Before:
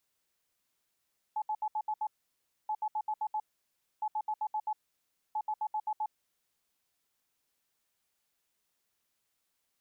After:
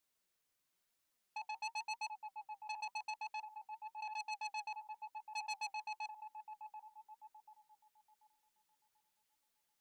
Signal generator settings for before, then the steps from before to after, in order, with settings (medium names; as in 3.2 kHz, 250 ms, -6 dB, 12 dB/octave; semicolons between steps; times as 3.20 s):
beep pattern sine 857 Hz, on 0.06 s, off 0.07 s, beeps 6, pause 0.62 s, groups 4, -29.5 dBFS
thinning echo 737 ms, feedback 48%, high-pass 1 kHz, level -6.5 dB; flange 0.96 Hz, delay 3.1 ms, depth 4.7 ms, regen +55%; transformer saturation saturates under 3.3 kHz